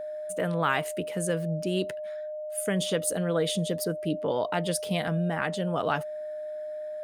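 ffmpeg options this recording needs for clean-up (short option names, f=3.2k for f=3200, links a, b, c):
-af "bandreject=f=610:w=30"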